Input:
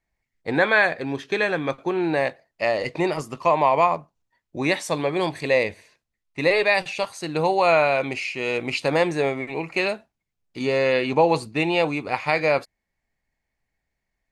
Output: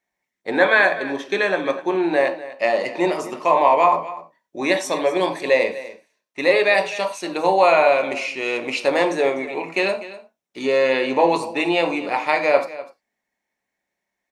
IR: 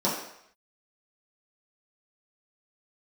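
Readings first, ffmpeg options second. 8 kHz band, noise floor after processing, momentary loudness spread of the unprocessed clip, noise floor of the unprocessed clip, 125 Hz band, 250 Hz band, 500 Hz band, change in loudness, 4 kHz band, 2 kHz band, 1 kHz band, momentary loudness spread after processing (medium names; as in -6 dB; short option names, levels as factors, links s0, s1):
+3.0 dB, -82 dBFS, 9 LU, -81 dBFS, -8.5 dB, +1.5 dB, +3.5 dB, +3.0 dB, +2.0 dB, +2.5 dB, +3.5 dB, 11 LU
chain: -filter_complex "[0:a]highpass=f=500:p=1,aecho=1:1:248:0.158,asplit=2[s0][s1];[1:a]atrim=start_sample=2205,afade=t=out:st=0.16:d=0.01,atrim=end_sample=7497[s2];[s1][s2]afir=irnorm=-1:irlink=0,volume=0.188[s3];[s0][s3]amix=inputs=2:normalize=0,volume=1.12"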